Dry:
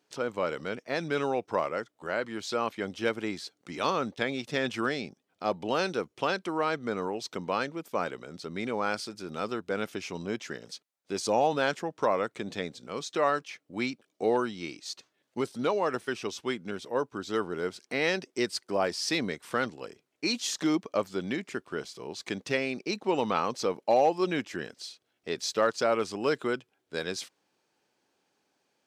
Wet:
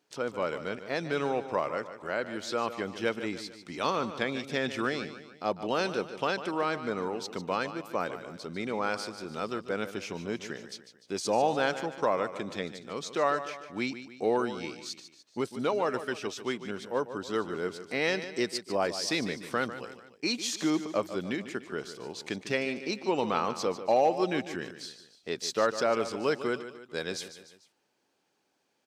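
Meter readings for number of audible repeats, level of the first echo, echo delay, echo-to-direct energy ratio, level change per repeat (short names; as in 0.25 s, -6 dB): 3, -12.0 dB, 0.148 s, -11.0 dB, -6.5 dB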